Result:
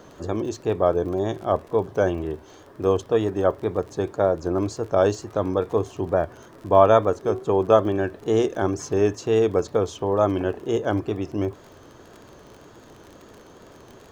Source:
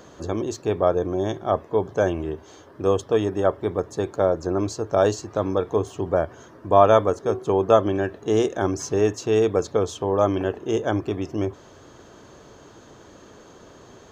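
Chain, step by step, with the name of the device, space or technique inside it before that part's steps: vinyl LP (wow and flutter; crackle 36/s -33 dBFS; pink noise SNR 39 dB); high shelf 4200 Hz -5 dB

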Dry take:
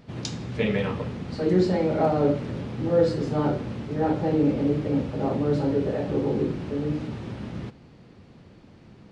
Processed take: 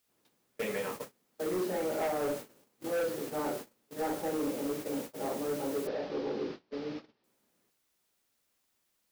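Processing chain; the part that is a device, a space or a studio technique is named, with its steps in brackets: aircraft radio (BPF 370–2600 Hz; hard clip -23 dBFS, distortion -12 dB; white noise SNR 11 dB; gate -33 dBFS, range -30 dB); 5.87–7.24 steep low-pass 5200 Hz 48 dB/oct; gain -5.5 dB

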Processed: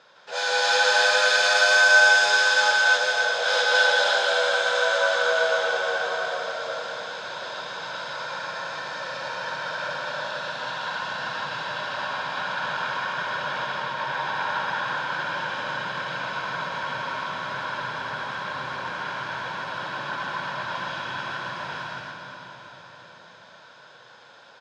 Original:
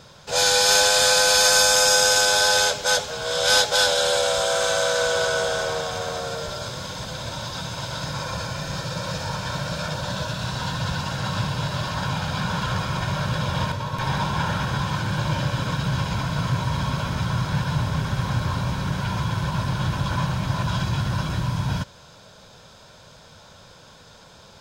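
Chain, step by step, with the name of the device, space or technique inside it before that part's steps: station announcement (BPF 480–3800 Hz; bell 1600 Hz +5.5 dB 0.45 oct; loudspeakers at several distances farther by 55 m -2 dB, 95 m -4 dB; reverb RT60 4.8 s, pre-delay 52 ms, DRR 2 dB); gain -5.5 dB

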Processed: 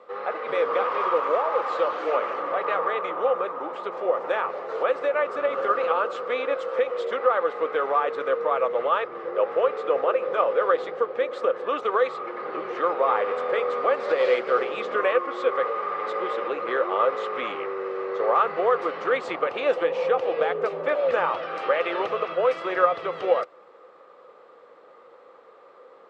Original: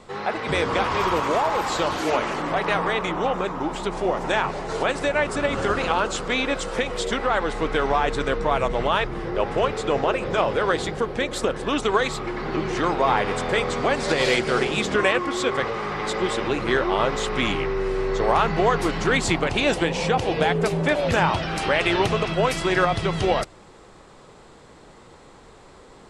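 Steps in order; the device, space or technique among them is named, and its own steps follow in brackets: tin-can telephone (BPF 460–2500 Hz; small resonant body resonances 510/1200 Hz, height 14 dB, ringing for 35 ms); gain -6 dB

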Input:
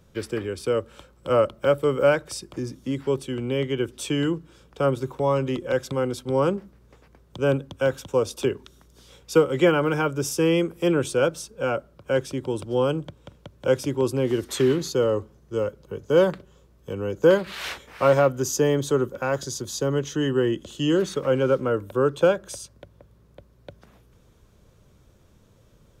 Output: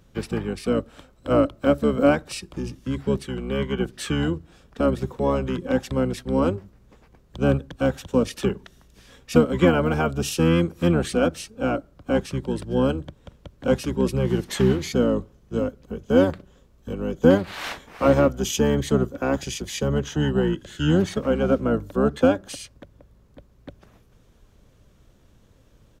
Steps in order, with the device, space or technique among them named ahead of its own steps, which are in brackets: octave pedal (harmoniser -12 st -1 dB); gain -1.5 dB

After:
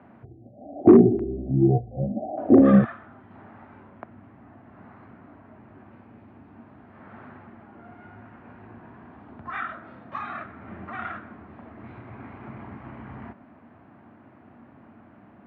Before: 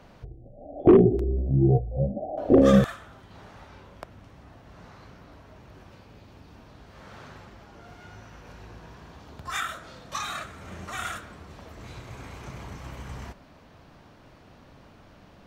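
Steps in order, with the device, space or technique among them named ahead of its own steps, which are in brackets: bass cabinet (speaker cabinet 89–2100 Hz, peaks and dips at 160 Hz -5 dB, 230 Hz +9 dB, 320 Hz +4 dB, 500 Hz -6 dB, 730 Hz +3 dB)

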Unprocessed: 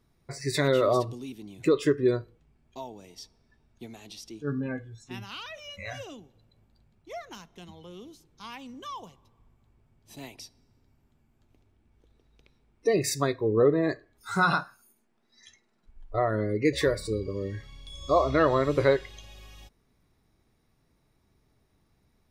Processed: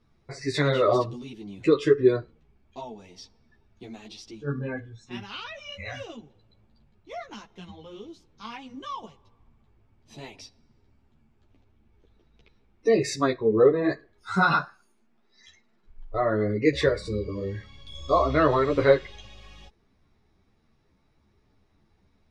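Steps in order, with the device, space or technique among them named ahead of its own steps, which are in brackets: string-machine ensemble chorus (ensemble effect; LPF 5100 Hz 12 dB/oct); gain +5.5 dB

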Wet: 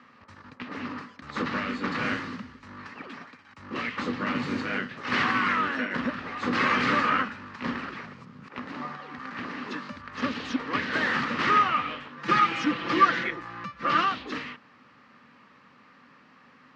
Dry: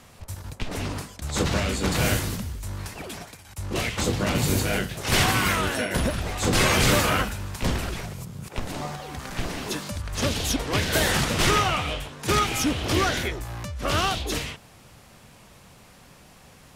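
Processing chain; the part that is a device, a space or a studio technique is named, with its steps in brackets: 12.17–14.04 comb 5.9 ms, depth 99%; kitchen radio (speaker cabinet 220–4100 Hz, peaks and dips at 250 Hz +10 dB, 380 Hz -4 dB, 680 Hz -9 dB, 1200 Hz +10 dB, 1800 Hz +7 dB, 3500 Hz -6 dB); gain -5 dB

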